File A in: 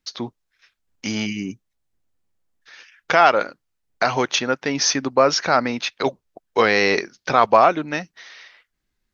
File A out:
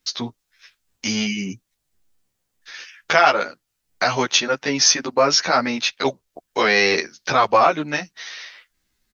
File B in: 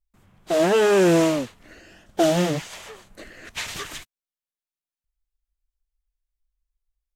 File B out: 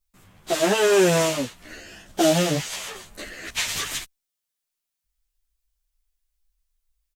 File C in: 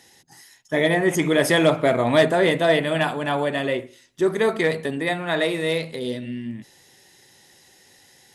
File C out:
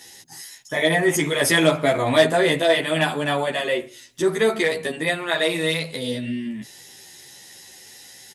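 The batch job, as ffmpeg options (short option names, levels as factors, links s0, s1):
-filter_complex "[0:a]highshelf=f=2500:g=8,asplit=2[s0][s1];[s1]acompressor=threshold=0.0282:ratio=6,volume=1.12[s2];[s0][s2]amix=inputs=2:normalize=0,asplit=2[s3][s4];[s4]adelay=11.8,afreqshift=-1.5[s5];[s3][s5]amix=inputs=2:normalize=1"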